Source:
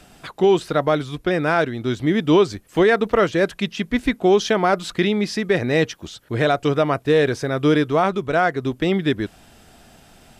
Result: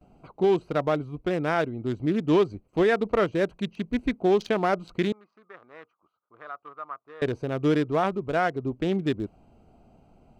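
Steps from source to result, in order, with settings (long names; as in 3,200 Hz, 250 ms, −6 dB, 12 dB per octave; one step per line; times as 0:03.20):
adaptive Wiener filter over 25 samples
noise gate with hold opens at −47 dBFS
0:05.12–0:07.22: resonant band-pass 1,200 Hz, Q 7.3
level −5.5 dB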